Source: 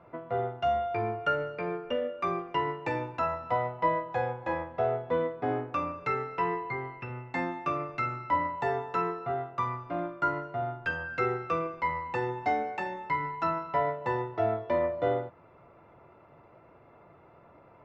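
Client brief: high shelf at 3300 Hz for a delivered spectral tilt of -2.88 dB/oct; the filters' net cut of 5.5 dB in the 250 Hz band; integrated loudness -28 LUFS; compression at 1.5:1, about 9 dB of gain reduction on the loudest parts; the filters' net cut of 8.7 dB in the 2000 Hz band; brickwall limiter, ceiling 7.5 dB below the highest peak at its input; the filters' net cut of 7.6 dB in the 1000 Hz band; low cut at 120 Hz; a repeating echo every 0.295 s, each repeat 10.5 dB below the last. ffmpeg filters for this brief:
-af "highpass=120,equalizer=f=250:t=o:g=-7.5,equalizer=f=1k:t=o:g=-7.5,equalizer=f=2k:t=o:g=-5.5,highshelf=f=3.3k:g=-9,acompressor=threshold=-54dB:ratio=1.5,alimiter=level_in=12.5dB:limit=-24dB:level=0:latency=1,volume=-12.5dB,aecho=1:1:295|590|885:0.299|0.0896|0.0269,volume=18dB"

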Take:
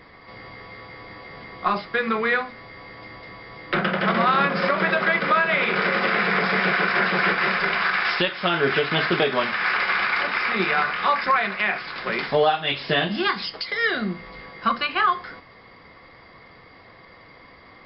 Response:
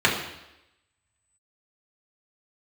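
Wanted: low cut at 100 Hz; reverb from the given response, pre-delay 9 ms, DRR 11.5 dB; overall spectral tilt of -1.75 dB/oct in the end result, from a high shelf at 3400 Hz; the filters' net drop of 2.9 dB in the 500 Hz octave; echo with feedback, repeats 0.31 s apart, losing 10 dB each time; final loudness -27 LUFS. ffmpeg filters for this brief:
-filter_complex "[0:a]highpass=100,equalizer=f=500:t=o:g=-3.5,highshelf=f=3.4k:g=-4,aecho=1:1:310|620|930|1240:0.316|0.101|0.0324|0.0104,asplit=2[a][b];[1:a]atrim=start_sample=2205,adelay=9[c];[b][c]afir=irnorm=-1:irlink=0,volume=-30.5dB[d];[a][d]amix=inputs=2:normalize=0,volume=-5dB"

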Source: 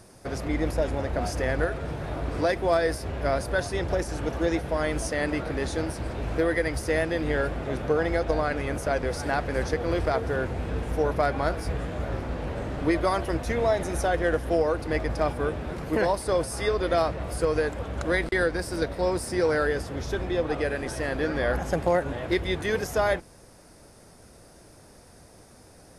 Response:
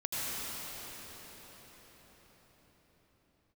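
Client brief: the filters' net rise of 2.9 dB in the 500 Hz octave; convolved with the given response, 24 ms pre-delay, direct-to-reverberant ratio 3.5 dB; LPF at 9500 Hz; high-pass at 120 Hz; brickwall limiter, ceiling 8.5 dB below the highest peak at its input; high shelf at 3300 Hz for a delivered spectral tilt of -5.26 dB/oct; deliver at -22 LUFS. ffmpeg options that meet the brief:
-filter_complex "[0:a]highpass=120,lowpass=9.5k,equalizer=f=500:t=o:g=3.5,highshelf=f=3.3k:g=-4,alimiter=limit=-17.5dB:level=0:latency=1,asplit=2[a][b];[1:a]atrim=start_sample=2205,adelay=24[c];[b][c]afir=irnorm=-1:irlink=0,volume=-10.5dB[d];[a][d]amix=inputs=2:normalize=0,volume=5dB"

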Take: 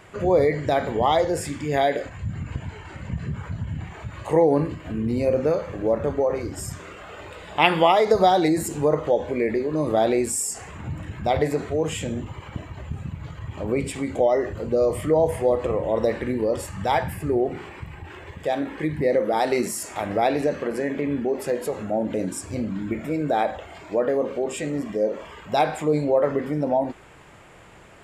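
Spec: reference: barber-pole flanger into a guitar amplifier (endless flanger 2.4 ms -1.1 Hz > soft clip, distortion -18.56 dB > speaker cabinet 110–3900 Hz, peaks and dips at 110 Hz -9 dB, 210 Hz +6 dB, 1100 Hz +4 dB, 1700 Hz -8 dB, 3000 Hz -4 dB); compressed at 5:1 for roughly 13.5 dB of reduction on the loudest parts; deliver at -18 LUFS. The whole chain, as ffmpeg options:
-filter_complex "[0:a]acompressor=threshold=-28dB:ratio=5,asplit=2[a][b];[b]adelay=2.4,afreqshift=-1.1[c];[a][c]amix=inputs=2:normalize=1,asoftclip=threshold=-26.5dB,highpass=110,equalizer=f=110:t=q:w=4:g=-9,equalizer=f=210:t=q:w=4:g=6,equalizer=f=1.1k:t=q:w=4:g=4,equalizer=f=1.7k:t=q:w=4:g=-8,equalizer=f=3k:t=q:w=4:g=-4,lowpass=f=3.9k:w=0.5412,lowpass=f=3.9k:w=1.3066,volume=19dB"

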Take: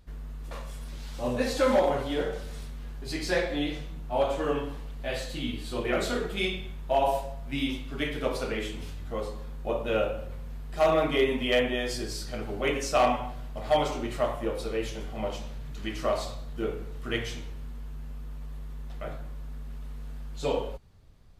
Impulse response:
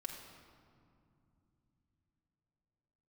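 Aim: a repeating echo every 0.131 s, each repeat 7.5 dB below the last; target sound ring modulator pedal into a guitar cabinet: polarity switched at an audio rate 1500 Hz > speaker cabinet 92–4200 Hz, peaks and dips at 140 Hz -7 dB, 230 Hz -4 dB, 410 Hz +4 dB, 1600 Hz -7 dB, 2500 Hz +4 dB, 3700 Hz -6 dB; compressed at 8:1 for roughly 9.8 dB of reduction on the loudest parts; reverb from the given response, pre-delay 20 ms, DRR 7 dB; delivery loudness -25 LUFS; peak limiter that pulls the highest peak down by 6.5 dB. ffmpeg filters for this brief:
-filter_complex "[0:a]acompressor=threshold=-29dB:ratio=8,alimiter=level_in=2.5dB:limit=-24dB:level=0:latency=1,volume=-2.5dB,aecho=1:1:131|262|393|524|655:0.422|0.177|0.0744|0.0312|0.0131,asplit=2[a][b];[1:a]atrim=start_sample=2205,adelay=20[c];[b][c]afir=irnorm=-1:irlink=0,volume=-5dB[d];[a][d]amix=inputs=2:normalize=0,aeval=exprs='val(0)*sgn(sin(2*PI*1500*n/s))':c=same,highpass=92,equalizer=f=140:t=q:w=4:g=-7,equalizer=f=230:t=q:w=4:g=-4,equalizer=f=410:t=q:w=4:g=4,equalizer=f=1.6k:t=q:w=4:g=-7,equalizer=f=2.5k:t=q:w=4:g=4,equalizer=f=3.7k:t=q:w=4:g=-6,lowpass=f=4.2k:w=0.5412,lowpass=f=4.2k:w=1.3066,volume=11.5dB"

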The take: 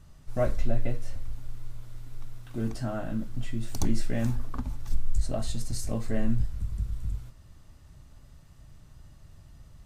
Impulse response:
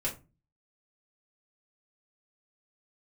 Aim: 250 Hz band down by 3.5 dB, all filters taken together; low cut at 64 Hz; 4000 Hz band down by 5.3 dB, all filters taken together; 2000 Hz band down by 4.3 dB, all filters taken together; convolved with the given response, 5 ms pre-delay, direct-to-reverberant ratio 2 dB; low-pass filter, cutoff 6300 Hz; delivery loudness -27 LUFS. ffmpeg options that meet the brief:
-filter_complex "[0:a]highpass=64,lowpass=6.3k,equalizer=f=250:t=o:g=-4,equalizer=f=2k:t=o:g=-4.5,equalizer=f=4k:t=o:g=-4.5,asplit=2[a][b];[1:a]atrim=start_sample=2205,adelay=5[c];[b][c]afir=irnorm=-1:irlink=0,volume=-6.5dB[d];[a][d]amix=inputs=2:normalize=0,volume=5.5dB"

